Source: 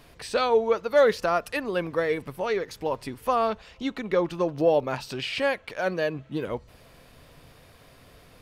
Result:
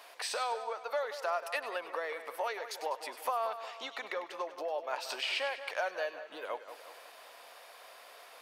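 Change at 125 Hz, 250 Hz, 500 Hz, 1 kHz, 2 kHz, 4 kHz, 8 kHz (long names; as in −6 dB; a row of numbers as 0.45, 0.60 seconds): below −40 dB, −24.5 dB, −13.5 dB, −7.0 dB, −6.5 dB, −3.5 dB, −1.0 dB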